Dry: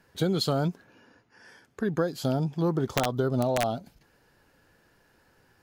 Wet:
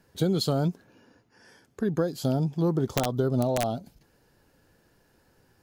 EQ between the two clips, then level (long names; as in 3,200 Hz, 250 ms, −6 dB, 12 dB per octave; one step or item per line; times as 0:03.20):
parametric band 1,700 Hz −6.5 dB 2.4 octaves
+2.0 dB